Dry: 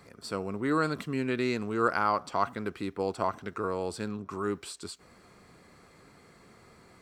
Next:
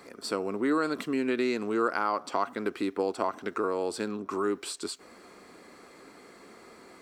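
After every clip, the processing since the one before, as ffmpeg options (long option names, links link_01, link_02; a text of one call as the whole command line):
ffmpeg -i in.wav -af "acompressor=threshold=-32dB:ratio=2.5,lowshelf=frequency=190:width_type=q:width=1.5:gain=-12,volume=5dB" out.wav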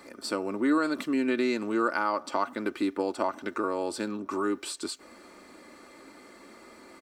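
ffmpeg -i in.wav -af "aecho=1:1:3.4:0.46" out.wav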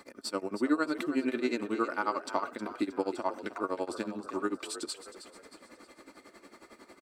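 ffmpeg -i in.wav -filter_complex "[0:a]tremolo=f=11:d=0.94,asplit=2[link_01][link_02];[link_02]asplit=4[link_03][link_04][link_05][link_06];[link_03]adelay=314,afreqshift=50,volume=-12.5dB[link_07];[link_04]adelay=628,afreqshift=100,volume=-19.4dB[link_08];[link_05]adelay=942,afreqshift=150,volume=-26.4dB[link_09];[link_06]adelay=1256,afreqshift=200,volume=-33.3dB[link_10];[link_07][link_08][link_09][link_10]amix=inputs=4:normalize=0[link_11];[link_01][link_11]amix=inputs=2:normalize=0" out.wav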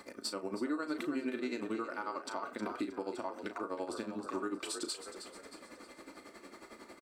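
ffmpeg -i in.wav -filter_complex "[0:a]alimiter=level_in=3.5dB:limit=-24dB:level=0:latency=1:release=260,volume=-3.5dB,asplit=2[link_01][link_02];[link_02]adelay=36,volume=-10dB[link_03];[link_01][link_03]amix=inputs=2:normalize=0,volume=1dB" out.wav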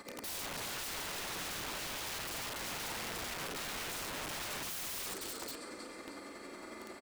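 ffmpeg -i in.wav -filter_complex "[0:a]asplit=2[link_01][link_02];[link_02]aecho=0:1:50|86|141|402|588:0.501|0.299|0.398|0.2|0.447[link_03];[link_01][link_03]amix=inputs=2:normalize=0,aeval=exprs='(mod(79.4*val(0)+1,2)-1)/79.4':channel_layout=same,volume=2dB" out.wav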